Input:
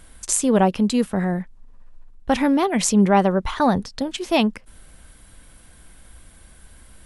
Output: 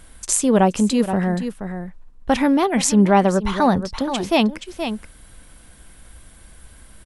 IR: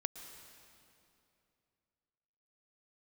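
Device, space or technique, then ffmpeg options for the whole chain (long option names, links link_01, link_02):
ducked delay: -filter_complex "[0:a]asplit=3[link_01][link_02][link_03];[link_02]adelay=475,volume=-8.5dB[link_04];[link_03]apad=whole_len=331896[link_05];[link_04][link_05]sidechaincompress=threshold=-25dB:ratio=5:attack=11:release=122[link_06];[link_01][link_06]amix=inputs=2:normalize=0,volume=1.5dB"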